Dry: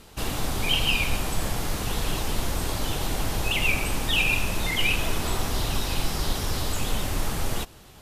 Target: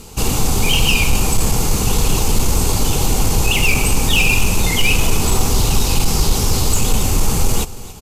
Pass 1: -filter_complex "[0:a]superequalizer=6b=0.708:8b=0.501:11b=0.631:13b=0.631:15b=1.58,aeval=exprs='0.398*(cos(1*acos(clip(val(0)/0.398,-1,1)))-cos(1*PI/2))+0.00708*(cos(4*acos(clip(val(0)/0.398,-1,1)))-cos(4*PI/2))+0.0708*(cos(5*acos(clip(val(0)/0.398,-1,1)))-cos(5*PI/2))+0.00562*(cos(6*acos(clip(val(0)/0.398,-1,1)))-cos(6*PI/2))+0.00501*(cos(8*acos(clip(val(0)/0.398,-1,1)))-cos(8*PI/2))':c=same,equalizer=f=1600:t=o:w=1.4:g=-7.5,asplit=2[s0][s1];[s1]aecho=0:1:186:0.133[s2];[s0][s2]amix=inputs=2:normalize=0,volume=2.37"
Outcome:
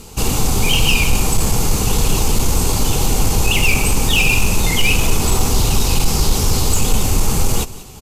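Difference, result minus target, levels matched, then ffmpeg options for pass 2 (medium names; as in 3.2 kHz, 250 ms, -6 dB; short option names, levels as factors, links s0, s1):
echo 93 ms early
-filter_complex "[0:a]superequalizer=6b=0.708:8b=0.501:11b=0.631:13b=0.631:15b=1.58,aeval=exprs='0.398*(cos(1*acos(clip(val(0)/0.398,-1,1)))-cos(1*PI/2))+0.00708*(cos(4*acos(clip(val(0)/0.398,-1,1)))-cos(4*PI/2))+0.0708*(cos(5*acos(clip(val(0)/0.398,-1,1)))-cos(5*PI/2))+0.00562*(cos(6*acos(clip(val(0)/0.398,-1,1)))-cos(6*PI/2))+0.00501*(cos(8*acos(clip(val(0)/0.398,-1,1)))-cos(8*PI/2))':c=same,equalizer=f=1600:t=o:w=1.4:g=-7.5,asplit=2[s0][s1];[s1]aecho=0:1:279:0.133[s2];[s0][s2]amix=inputs=2:normalize=0,volume=2.37"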